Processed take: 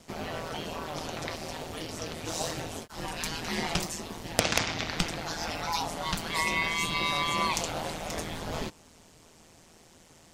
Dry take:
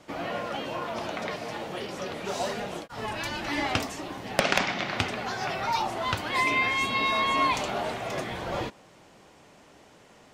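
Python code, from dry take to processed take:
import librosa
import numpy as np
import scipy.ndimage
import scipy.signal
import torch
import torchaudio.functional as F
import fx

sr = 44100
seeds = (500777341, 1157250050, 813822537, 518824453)

y = x * np.sin(2.0 * np.pi * 81.0 * np.arange(len(x)) / sr)
y = fx.bass_treble(y, sr, bass_db=7, treble_db=12)
y = F.gain(torch.from_numpy(y), -2.0).numpy()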